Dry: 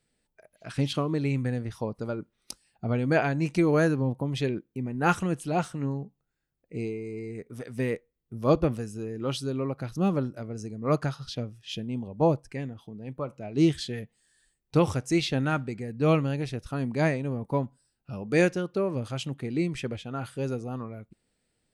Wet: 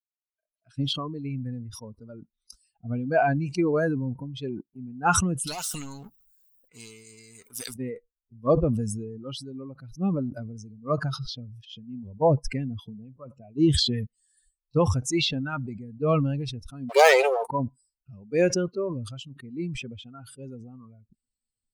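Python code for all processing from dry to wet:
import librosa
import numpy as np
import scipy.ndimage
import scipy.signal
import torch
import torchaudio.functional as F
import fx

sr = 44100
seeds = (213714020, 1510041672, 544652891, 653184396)

y = fx.chain(x, sr, fx.bass_treble(bass_db=-3, treble_db=11),
    fx.leveller(passes=2),
    fx.spectral_comp(ratio=2.0), at=(5.47, 7.74))
y = fx.chain(y, sr, fx.high_shelf(hz=3000.0, db=11.0),
    fx.leveller(passes=5),
    fx.brickwall_highpass(low_hz=370.0), at=(16.89, 17.46))
y = fx.bin_expand(y, sr, power=2.0)
y = fx.dynamic_eq(y, sr, hz=770.0, q=0.81, threshold_db=-43.0, ratio=4.0, max_db=7)
y = fx.sustainer(y, sr, db_per_s=35.0)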